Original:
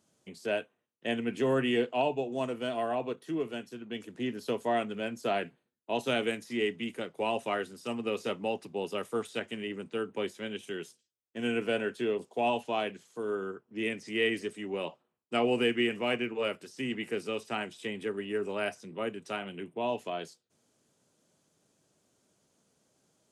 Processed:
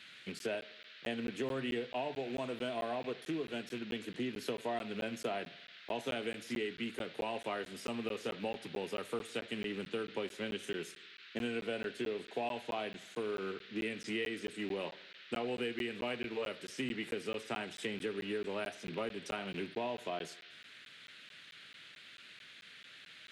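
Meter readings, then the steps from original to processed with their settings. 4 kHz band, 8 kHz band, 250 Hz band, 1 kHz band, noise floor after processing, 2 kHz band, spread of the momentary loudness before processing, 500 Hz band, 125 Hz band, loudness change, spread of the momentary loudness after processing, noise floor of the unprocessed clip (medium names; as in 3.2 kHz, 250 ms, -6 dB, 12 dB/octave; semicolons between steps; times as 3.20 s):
-4.5 dB, -1.5 dB, -6.0 dB, -7.5 dB, -55 dBFS, -5.5 dB, 10 LU, -7.0 dB, -5.0 dB, -6.5 dB, 14 LU, -80 dBFS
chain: rattle on loud lows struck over -45 dBFS, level -38 dBFS; compression 6:1, threshold -38 dBFS, peak gain reduction 14.5 dB; band noise 1.4–4 kHz -58 dBFS; on a send: filtered feedback delay 82 ms, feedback 58%, level -19 dB; on the sum: crackling interface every 0.22 s, samples 512, zero, from 0.39 s; trim +3 dB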